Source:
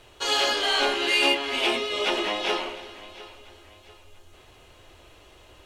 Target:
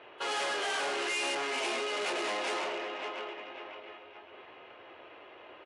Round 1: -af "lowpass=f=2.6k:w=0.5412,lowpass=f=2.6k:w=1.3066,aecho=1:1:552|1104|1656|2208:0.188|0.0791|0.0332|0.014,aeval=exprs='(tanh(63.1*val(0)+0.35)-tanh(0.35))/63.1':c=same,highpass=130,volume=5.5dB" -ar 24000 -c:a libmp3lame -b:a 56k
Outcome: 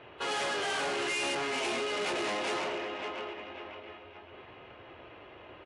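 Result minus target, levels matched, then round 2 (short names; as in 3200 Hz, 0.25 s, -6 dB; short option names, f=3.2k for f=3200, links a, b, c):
125 Hz band +12.5 dB
-af "lowpass=f=2.6k:w=0.5412,lowpass=f=2.6k:w=1.3066,aecho=1:1:552|1104|1656|2208:0.188|0.0791|0.0332|0.014,aeval=exprs='(tanh(63.1*val(0)+0.35)-tanh(0.35))/63.1':c=same,highpass=350,volume=5.5dB" -ar 24000 -c:a libmp3lame -b:a 56k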